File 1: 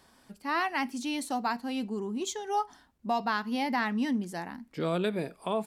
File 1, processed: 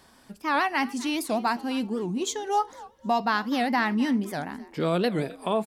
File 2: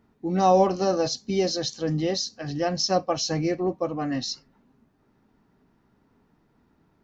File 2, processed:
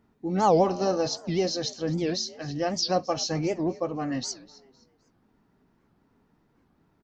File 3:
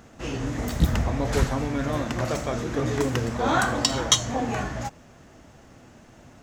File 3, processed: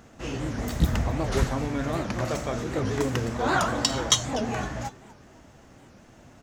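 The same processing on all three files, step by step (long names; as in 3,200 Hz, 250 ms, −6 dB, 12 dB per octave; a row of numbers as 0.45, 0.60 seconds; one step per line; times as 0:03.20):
echo with shifted repeats 256 ms, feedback 32%, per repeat +66 Hz, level −20 dB
wow of a warped record 78 rpm, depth 250 cents
loudness normalisation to −27 LKFS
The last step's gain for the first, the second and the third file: +4.5, −2.0, −1.5 decibels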